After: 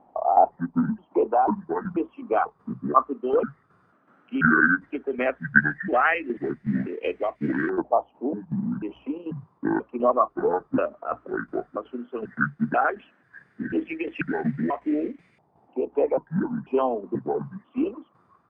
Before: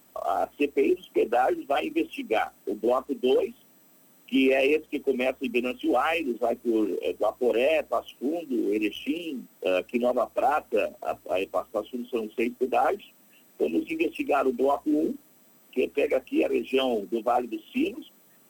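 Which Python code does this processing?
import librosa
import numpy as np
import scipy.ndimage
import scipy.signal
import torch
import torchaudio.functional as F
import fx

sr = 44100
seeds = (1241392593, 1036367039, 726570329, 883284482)

y = fx.pitch_trill(x, sr, semitones=-9.0, every_ms=490)
y = fx.filter_lfo_lowpass(y, sr, shape='saw_up', hz=0.13, low_hz=820.0, high_hz=2200.0, q=6.1)
y = fx.tremolo_shape(y, sr, shape='saw_down', hz=2.7, depth_pct=60)
y = y * 10.0 ** (1.5 / 20.0)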